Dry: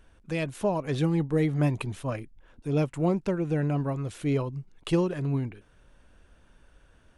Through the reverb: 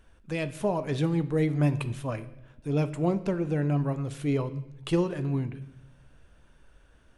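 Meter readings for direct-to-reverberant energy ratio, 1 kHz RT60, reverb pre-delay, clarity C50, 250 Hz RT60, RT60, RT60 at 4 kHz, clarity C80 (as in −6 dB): 11.0 dB, 0.80 s, 14 ms, 15.0 dB, 1.2 s, 0.90 s, 0.80 s, 17.5 dB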